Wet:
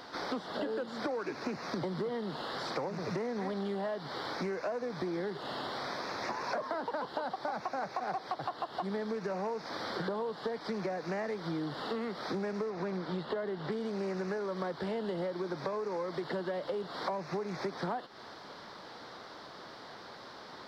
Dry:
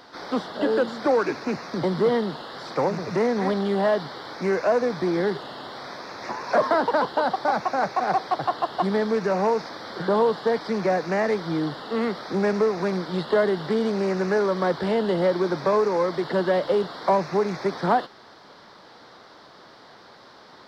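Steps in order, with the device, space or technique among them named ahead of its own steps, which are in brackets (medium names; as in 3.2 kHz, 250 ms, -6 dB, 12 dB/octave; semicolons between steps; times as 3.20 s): 12.70–13.72 s: treble shelf 5.7 kHz -10.5 dB; serial compression, leveller first (compression 1.5:1, threshold -30 dBFS, peak gain reduction 5.5 dB; compression, threshold -33 dBFS, peak gain reduction 12 dB)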